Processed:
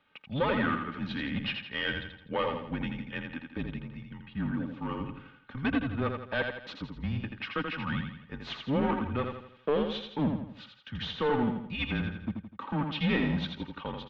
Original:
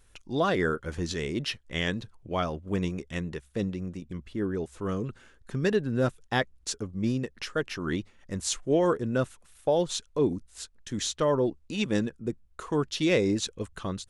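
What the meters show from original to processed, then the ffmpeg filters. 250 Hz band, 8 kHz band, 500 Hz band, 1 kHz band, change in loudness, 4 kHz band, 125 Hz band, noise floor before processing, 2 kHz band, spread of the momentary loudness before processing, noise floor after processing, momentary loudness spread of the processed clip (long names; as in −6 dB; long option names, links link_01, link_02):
−2.0 dB, below −30 dB, −6.5 dB, −0.5 dB, −3.0 dB, −2.0 dB, −2.0 dB, −60 dBFS, +0.5 dB, 11 LU, −56 dBFS, 12 LU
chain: -filter_complex "[0:a]lowshelf=frequency=250:gain=-11.5,aecho=1:1:3:0.63,aeval=exprs='clip(val(0),-1,0.0422)':channel_layout=same,asplit=2[link_01][link_02];[link_02]aecho=0:1:83|166|249|332|415:0.531|0.234|0.103|0.0452|0.0199[link_03];[link_01][link_03]amix=inputs=2:normalize=0,highpass=frequency=160:width_type=q:width=0.5412,highpass=frequency=160:width_type=q:width=1.307,lowpass=frequency=3600:width_type=q:width=0.5176,lowpass=frequency=3600:width_type=q:width=0.7071,lowpass=frequency=3600:width_type=q:width=1.932,afreqshift=-140"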